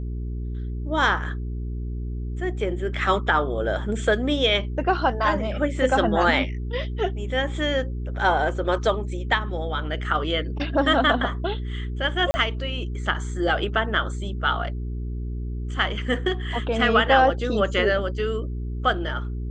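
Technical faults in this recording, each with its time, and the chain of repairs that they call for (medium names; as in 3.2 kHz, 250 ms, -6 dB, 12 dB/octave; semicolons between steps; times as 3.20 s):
hum 60 Hz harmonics 7 -29 dBFS
12.31–12.34 s: dropout 30 ms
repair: de-hum 60 Hz, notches 7; interpolate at 12.31 s, 30 ms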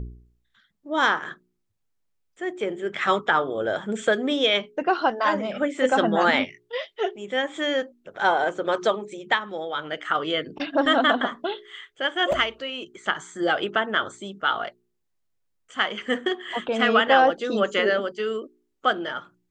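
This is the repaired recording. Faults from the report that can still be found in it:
nothing left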